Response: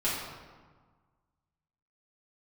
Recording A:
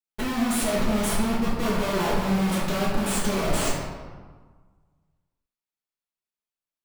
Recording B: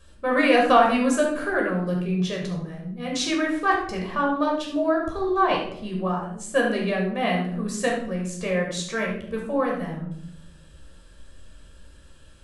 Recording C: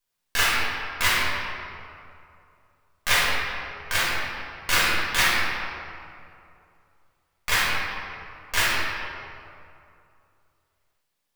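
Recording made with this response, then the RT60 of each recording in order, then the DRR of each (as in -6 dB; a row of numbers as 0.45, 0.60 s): A; 1.5, 0.70, 2.6 s; -10.0, -1.5, -8.5 dB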